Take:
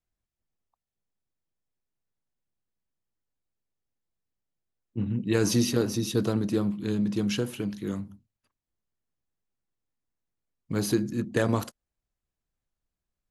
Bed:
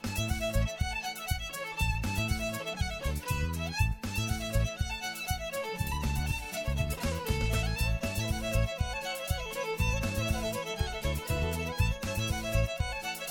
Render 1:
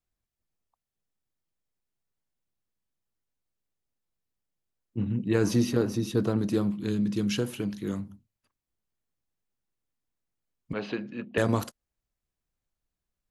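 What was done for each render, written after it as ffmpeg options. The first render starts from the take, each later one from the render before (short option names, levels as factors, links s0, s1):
-filter_complex "[0:a]asettb=1/sr,asplit=3[s0][s1][s2];[s0]atrim=end=5.284[s3];[s1]atrim=start=5.28:end=6.39,asetpts=PTS-STARTPTS,afade=t=in:d=0.004:c=qsin,afade=t=out:st=1.106:d=0.004:c=qsin,adynamicequalizer=threshold=0.00447:dfrequency=2700:dqfactor=0.7:tfrequency=2700:tqfactor=0.7:attack=5:release=100:ratio=0.375:range=4:mode=cutabove:tftype=highshelf[s4];[s2]atrim=start=6.386[s5];[s3][s4]acrossfade=d=0.004:c1=hsin:c2=qsin[s6];[s6][s5]acrossfade=d=0.004:c1=qsin:c2=hsin,asettb=1/sr,asplit=3[s7][s8][s9];[s7]atrim=end=6.894[s10];[s8]atrim=start=6.89:end=7.36,asetpts=PTS-STARTPTS,afade=t=in:d=0.004:c=qsin,afade=t=out:st=0.466:d=0.004:c=qsin,equalizer=f=770:w=1.5:g=-8[s11];[s9]atrim=start=7.356[s12];[s10][s11]acrossfade=d=0.004:c1=hsin:c2=qsin[s13];[s13][s12]acrossfade=d=0.004:c1=qsin:c2=hsin,asettb=1/sr,asplit=3[s14][s15][s16];[s14]atrim=end=10.734[s17];[s15]atrim=start=10.73:end=11.38,asetpts=PTS-STARTPTS,afade=t=in:d=0.004:c=qsin,afade=t=out:st=0.646:d=0.004:c=qsin,highpass=290,equalizer=f=330:t=q:w=4:g=-9,equalizer=f=600:t=q:w=4:g=4,equalizer=f=2700:t=q:w=4:g=9,lowpass=f=3300:w=0.5412,lowpass=f=3300:w=1.3066[s18];[s16]atrim=start=11.376[s19];[s17][s18]acrossfade=d=0.004:c1=hsin:c2=qsin[s20];[s20][s19]acrossfade=d=0.004:c1=qsin:c2=hsin"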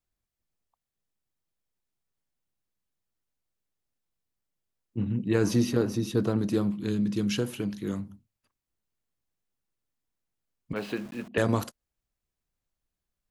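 -filter_complex "[0:a]asettb=1/sr,asplit=3[s0][s1][s2];[s0]atrim=end=10.764[s3];[s1]atrim=start=10.76:end=11.28,asetpts=PTS-STARTPTS,afade=t=in:d=0.004:c=qsin,afade=t=out:st=0.516:d=0.004:c=qsin,aeval=exprs='val(0)*gte(abs(val(0)),0.00596)':c=same[s4];[s2]atrim=start=11.276[s5];[s3][s4]acrossfade=d=0.004:c1=hsin:c2=qsin[s6];[s6][s5]acrossfade=d=0.004:c1=qsin:c2=hsin"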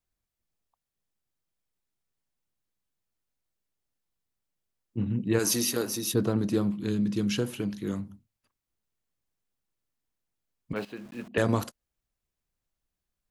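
-filter_complex "[0:a]asplit=3[s0][s1][s2];[s0]afade=t=out:st=5.38:d=0.02[s3];[s1]aemphasis=mode=production:type=riaa,afade=t=in:st=5.38:d=0.02,afade=t=out:st=6.13:d=0.02[s4];[s2]afade=t=in:st=6.13:d=0.02[s5];[s3][s4][s5]amix=inputs=3:normalize=0,asplit=2[s6][s7];[s6]atrim=end=10.85,asetpts=PTS-STARTPTS,afade=t=out:st=10.846:d=0.004:c=hsin:silence=0.199526[s8];[s7]atrim=start=10.85,asetpts=PTS-STARTPTS,afade=t=in:d=0.48:silence=0.199526[s9];[s8][s9]concat=n=2:v=0:a=1"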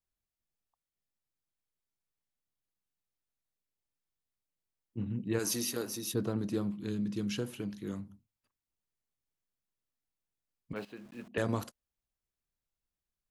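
-af "volume=0.447"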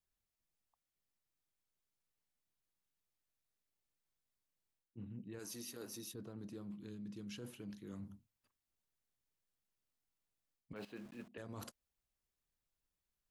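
-af "alimiter=level_in=1.5:limit=0.0631:level=0:latency=1:release=191,volume=0.668,areverse,acompressor=threshold=0.00562:ratio=12,areverse"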